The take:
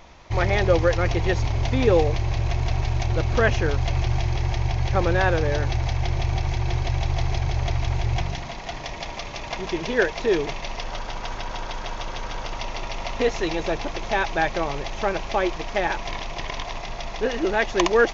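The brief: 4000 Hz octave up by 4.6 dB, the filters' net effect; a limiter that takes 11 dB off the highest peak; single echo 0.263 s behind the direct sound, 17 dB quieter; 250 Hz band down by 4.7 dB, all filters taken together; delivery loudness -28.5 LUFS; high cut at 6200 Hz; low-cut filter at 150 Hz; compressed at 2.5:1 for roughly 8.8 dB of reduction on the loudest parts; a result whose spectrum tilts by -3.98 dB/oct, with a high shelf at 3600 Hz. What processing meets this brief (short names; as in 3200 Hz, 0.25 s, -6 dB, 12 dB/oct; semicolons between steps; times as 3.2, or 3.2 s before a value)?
HPF 150 Hz; LPF 6200 Hz; bell 250 Hz -7 dB; high shelf 3600 Hz +4 dB; bell 4000 Hz +4 dB; compressor 2.5:1, threshold -28 dBFS; limiter -22.5 dBFS; echo 0.263 s -17 dB; gain +4.5 dB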